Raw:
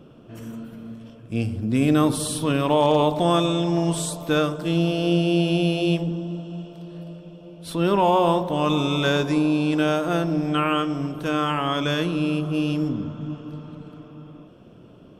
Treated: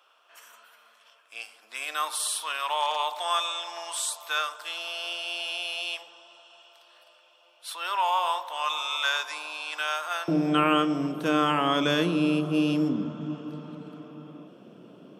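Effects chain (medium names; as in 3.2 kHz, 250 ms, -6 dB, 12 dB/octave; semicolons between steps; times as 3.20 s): high-pass 920 Hz 24 dB/octave, from 10.28 s 170 Hz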